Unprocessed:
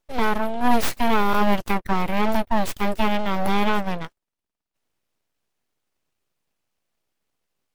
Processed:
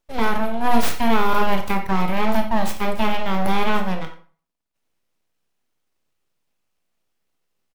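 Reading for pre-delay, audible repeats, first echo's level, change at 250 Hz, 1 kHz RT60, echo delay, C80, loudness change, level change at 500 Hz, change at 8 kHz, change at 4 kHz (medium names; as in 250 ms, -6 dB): 23 ms, 1, -16.5 dB, +0.5 dB, 0.45 s, 89 ms, 13.5 dB, +1.0 dB, +1.0 dB, +1.0 dB, +1.5 dB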